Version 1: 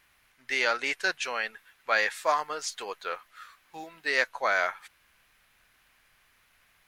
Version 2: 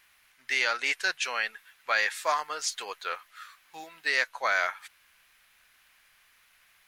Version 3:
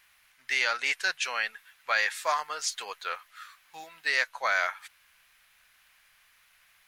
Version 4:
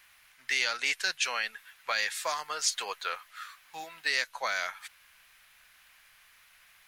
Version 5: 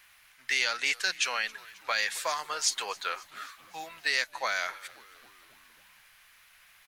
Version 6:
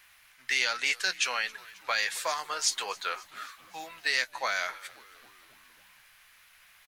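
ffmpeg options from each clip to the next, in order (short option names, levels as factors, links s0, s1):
-filter_complex "[0:a]tiltshelf=f=760:g=-5.5,asplit=2[s0][s1];[s1]alimiter=limit=0.211:level=0:latency=1:release=264,volume=1.19[s2];[s0][s2]amix=inputs=2:normalize=0,volume=0.376"
-af "equalizer=f=320:w=1.4:g=-6"
-filter_complex "[0:a]acrossover=split=340|3000[s0][s1][s2];[s1]acompressor=threshold=0.02:ratio=6[s3];[s0][s3][s2]amix=inputs=3:normalize=0,volume=1.41"
-filter_complex "[0:a]asplit=6[s0][s1][s2][s3][s4][s5];[s1]adelay=269,afreqshift=-99,volume=0.075[s6];[s2]adelay=538,afreqshift=-198,volume=0.0462[s7];[s3]adelay=807,afreqshift=-297,volume=0.0288[s8];[s4]adelay=1076,afreqshift=-396,volume=0.0178[s9];[s5]adelay=1345,afreqshift=-495,volume=0.0111[s10];[s0][s6][s7][s8][s9][s10]amix=inputs=6:normalize=0,volume=1.12"
-filter_complex "[0:a]asplit=2[s0][s1];[s1]adelay=16,volume=0.224[s2];[s0][s2]amix=inputs=2:normalize=0"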